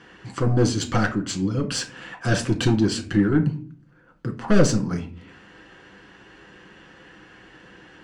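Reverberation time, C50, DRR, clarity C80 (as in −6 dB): non-exponential decay, 12.5 dB, 2.0 dB, 18.0 dB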